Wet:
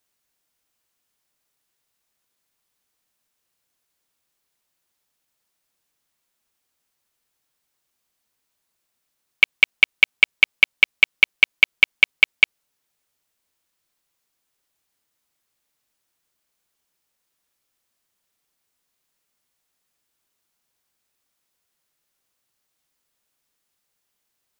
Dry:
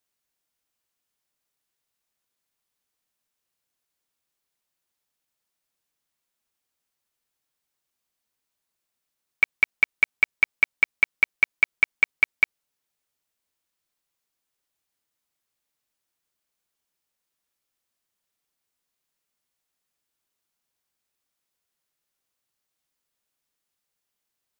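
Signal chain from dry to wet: Doppler distortion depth 0.39 ms; gain +6 dB

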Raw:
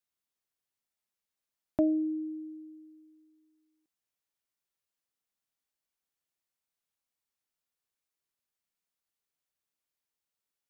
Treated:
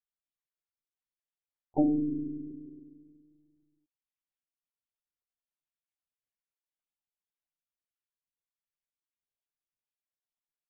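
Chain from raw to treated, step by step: loudest bins only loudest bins 32; harmoniser -5 st -4 dB, -3 st -3 dB, +4 st -7 dB; monotone LPC vocoder at 8 kHz 150 Hz; gain -2 dB

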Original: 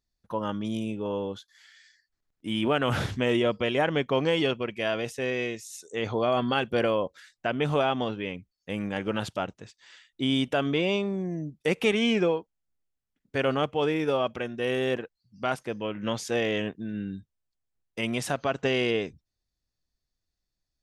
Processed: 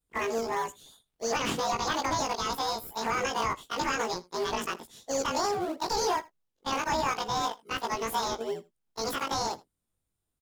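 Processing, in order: short-time reversal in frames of 89 ms; speed mistake 7.5 ips tape played at 15 ips; low shelf 290 Hz -6 dB; in parallel at -10 dB: decimation with a swept rate 34×, swing 100% 2.9 Hz; on the sum: notch 580 Hz, Q 15; limiter -23 dBFS, peak gain reduction 9 dB; on a send: echo 80 ms -22 dB; on the sum: Doppler distortion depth 0.11 ms; gain +4.5 dB

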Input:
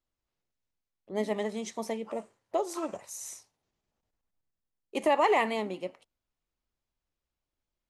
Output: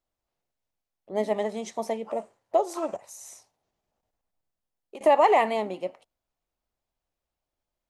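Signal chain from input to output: bell 690 Hz +8 dB 0.99 oct; 2.96–5.01 compressor 6:1, threshold -41 dBFS, peak gain reduction 16.5 dB

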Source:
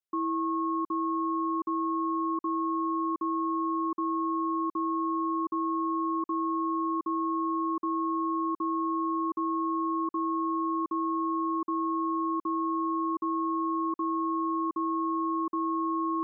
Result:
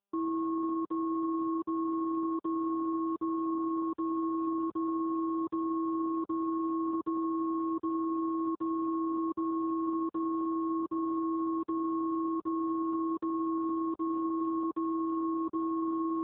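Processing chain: elliptic low-pass 970 Hz, stop band 70 dB; AMR-NB 10.2 kbps 8000 Hz

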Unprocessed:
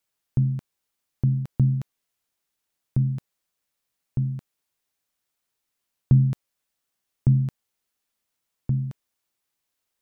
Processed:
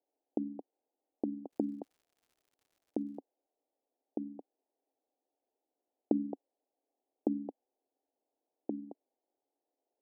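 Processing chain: elliptic band-pass 270–790 Hz, stop band 40 dB; 1.5–3.17 crackle 140/s -67 dBFS; gain +7 dB

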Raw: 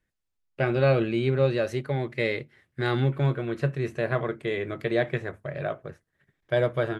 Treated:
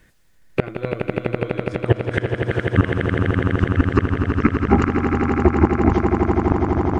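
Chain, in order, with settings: gliding pitch shift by -12 st starting unshifted; flipped gate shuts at -21 dBFS, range -33 dB; on a send: swelling echo 83 ms, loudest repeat 8, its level -10 dB; on the sum: maximiser +25 dB; gain -1 dB

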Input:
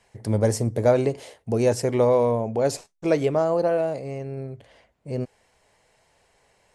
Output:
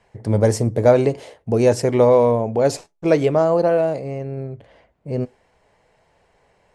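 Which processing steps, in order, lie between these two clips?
high shelf 8500 Hz -7 dB; on a send at -22 dB: reverb RT60 0.25 s, pre-delay 3 ms; on the sum: mismatched tape noise reduction decoder only; gain +5 dB

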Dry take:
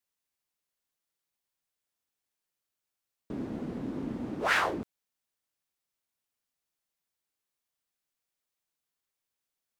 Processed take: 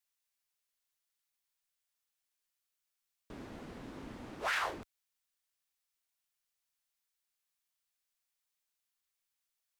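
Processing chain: bell 230 Hz -15 dB 3 oct; limiter -25.5 dBFS, peak gain reduction 9 dB; gain +1 dB

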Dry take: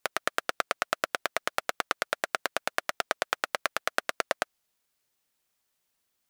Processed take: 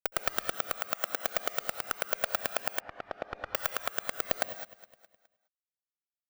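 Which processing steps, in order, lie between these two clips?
low shelf 290 Hz +4.5 dB; in parallel at +2.5 dB: limiter -15 dBFS, peak gain reduction 11 dB; on the sum: tremolo triangle 0.95 Hz, depth 60%; fuzz box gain 31 dB, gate -28 dBFS; feedback echo 0.208 s, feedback 46%, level -17 dB; on a send at -9 dB: reverb, pre-delay 64 ms; on the sum: careless resampling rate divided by 2×, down none, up zero stuff; 2.8–3.55 tape spacing loss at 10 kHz 39 dB; gain -7 dB

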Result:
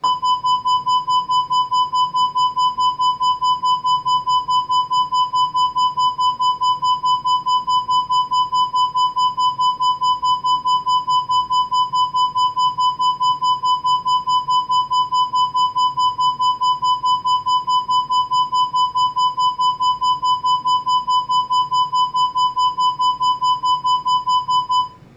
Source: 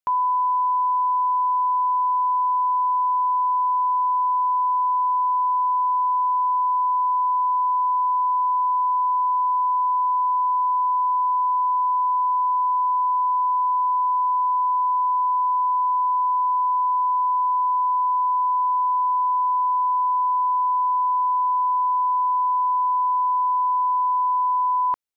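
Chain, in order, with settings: grains 0.128 s, grains 4.7/s, pitch spread up and down by 0 st; soft clip -29.5 dBFS, distortion -9 dB; added noise brown -56 dBFS; reverb RT60 0.40 s, pre-delay 3 ms, DRR -6.5 dB; gain +8.5 dB

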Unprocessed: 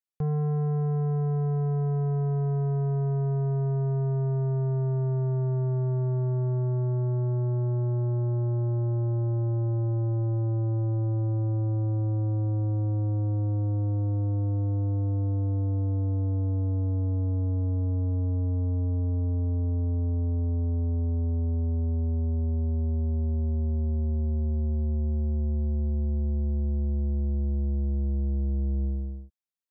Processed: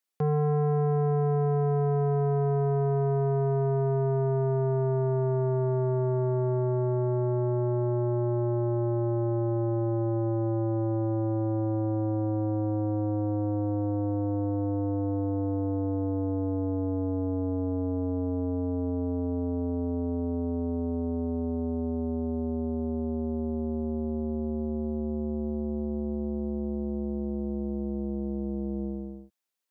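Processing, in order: HPF 230 Hz 12 dB/oct; gain +8 dB

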